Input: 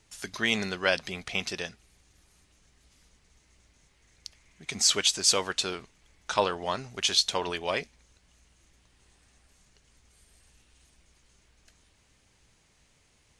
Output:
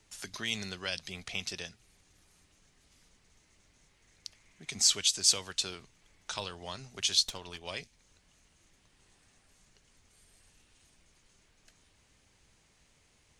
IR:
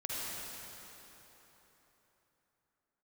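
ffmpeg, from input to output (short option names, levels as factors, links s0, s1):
-filter_complex "[0:a]bandreject=f=60:t=h:w=6,bandreject=f=120:t=h:w=6,acrossover=split=140|3000[s0][s1][s2];[s1]acompressor=threshold=0.00631:ratio=2.5[s3];[s0][s3][s2]amix=inputs=3:normalize=0,asettb=1/sr,asplit=3[s4][s5][s6];[s4]atrim=end=7.234[s7];[s5]atrim=start=7.23:end=7.67,asetpts=PTS-STARTPTS,afade=t=in:d=0.004:c=qsin,afade=t=out:st=0.436:d=0.004:c=qsin,aeval=exprs='(tanh(22.4*val(0)+0.75)-tanh(0.75))/22.4':c=same[s8];[s6]atrim=start=7.666[s9];[s7][s8]acrossfade=d=0.004:c1=hsin:c2=qsin[s10];[s10][s9]acrossfade=d=0.004:c1=qsin:c2=hsin,volume=0.841"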